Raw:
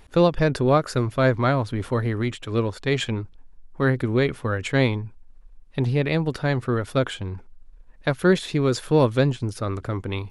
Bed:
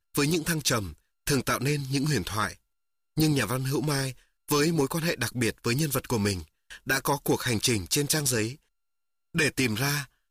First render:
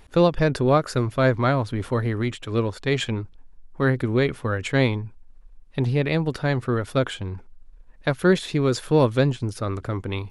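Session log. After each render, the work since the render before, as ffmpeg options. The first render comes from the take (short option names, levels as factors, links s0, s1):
-af anull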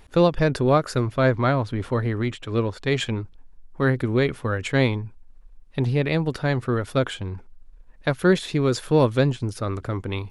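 -filter_complex "[0:a]asettb=1/sr,asplit=3[s0][s1][s2];[s0]atrim=end=1.004[s3];[s1]atrim=start=1:end=2.81,asetpts=PTS-STARTPTS,afade=t=in:d=0.004:c=qsin,afade=t=out:st=1.806:d=0.004:c=qsin,highshelf=f=8800:g=-9.5[s4];[s2]atrim=start=2.806[s5];[s3][s4]acrossfade=d=0.004:c1=hsin:c2=qsin[s6];[s6][s5]acrossfade=d=0.004:c1=qsin:c2=hsin"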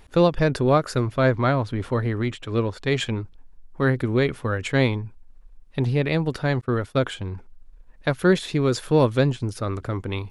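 -filter_complex "[0:a]asettb=1/sr,asplit=3[s0][s1][s2];[s0]atrim=end=6.614[s3];[s1]atrim=start=6.61:end=7.17,asetpts=PTS-STARTPTS,afade=t=in:d=0.004:c=qsin,afade=t=out:st=0.556:d=0.004:c=qsin,agate=range=0.0224:threshold=0.0251:ratio=3:release=100:detection=peak[s4];[s2]atrim=start=7.166[s5];[s3][s4]acrossfade=d=0.004:c1=hsin:c2=qsin[s6];[s6][s5]acrossfade=d=0.004:c1=qsin:c2=hsin"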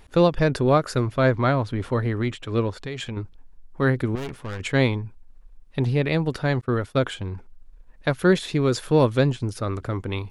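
-filter_complex "[0:a]asettb=1/sr,asplit=3[s0][s1][s2];[s0]atrim=end=2.774[s3];[s1]atrim=start=2.77:end=3.17,asetpts=PTS-STARTPTS,afade=t=in:d=0.004:c=qsin,afade=t=out:st=0.396:d=0.004:c=qsin,acompressor=threshold=0.0398:ratio=6:attack=3.2:release=140:knee=1:detection=peak[s4];[s2]atrim=start=3.166[s5];[s3][s4]acrossfade=d=0.004:c1=hsin:c2=qsin[s6];[s6][s5]acrossfade=d=0.004:c1=qsin:c2=hsin,asettb=1/sr,asplit=3[s7][s8][s9];[s7]atrim=end=4.154[s10];[s8]atrim=start=4.15:end=4.6,asetpts=PTS-STARTPTS,afade=t=in:d=0.004:c=qsin,afade=t=out:st=0.446:d=0.004:c=qsin,aeval=exprs='(tanh(28.2*val(0)+0.6)-tanh(0.6))/28.2':c=same[s11];[s9]atrim=start=4.596[s12];[s10][s11]acrossfade=d=0.004:c1=hsin:c2=qsin[s13];[s13][s12]acrossfade=d=0.004:c1=qsin:c2=hsin"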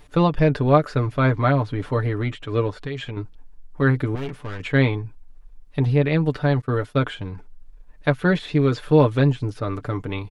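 -filter_complex "[0:a]acrossover=split=3900[s0][s1];[s1]acompressor=threshold=0.002:ratio=4:attack=1:release=60[s2];[s0][s2]amix=inputs=2:normalize=0,aecho=1:1:6.8:0.6"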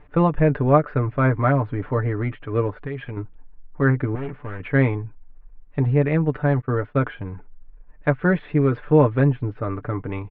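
-af "lowpass=f=2200:w=0.5412,lowpass=f=2200:w=1.3066"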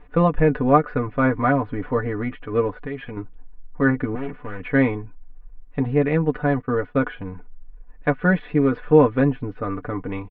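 -af "aecho=1:1:4.1:0.57"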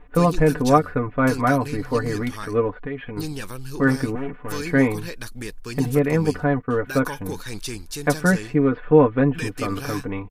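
-filter_complex "[1:a]volume=0.447[s0];[0:a][s0]amix=inputs=2:normalize=0"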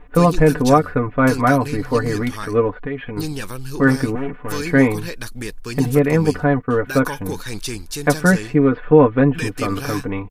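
-af "volume=1.58,alimiter=limit=0.891:level=0:latency=1"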